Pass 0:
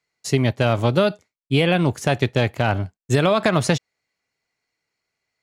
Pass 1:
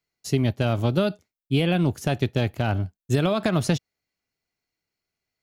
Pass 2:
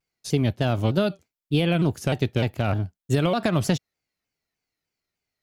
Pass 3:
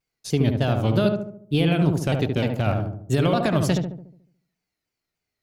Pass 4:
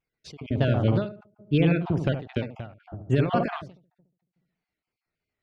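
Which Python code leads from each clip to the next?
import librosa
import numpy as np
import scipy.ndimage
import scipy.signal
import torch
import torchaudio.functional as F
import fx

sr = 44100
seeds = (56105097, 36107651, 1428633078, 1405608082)

y1 = fx.graphic_eq_10(x, sr, hz=(125, 250, 500, 1000, 2000, 4000, 8000), db=(-6, -3, -8, -9, -10, -5, -10))
y1 = F.gain(torch.from_numpy(y1), 4.0).numpy()
y2 = fx.vibrato_shape(y1, sr, shape='saw_down', rate_hz=3.3, depth_cents=160.0)
y3 = fx.echo_filtered(y2, sr, ms=72, feedback_pct=52, hz=1100.0, wet_db=-3.0)
y4 = fx.spec_dropout(y3, sr, seeds[0], share_pct=21)
y4 = scipy.signal.sosfilt(scipy.signal.butter(2, 3100.0, 'lowpass', fs=sr, output='sos'), y4)
y4 = fx.end_taper(y4, sr, db_per_s=130.0)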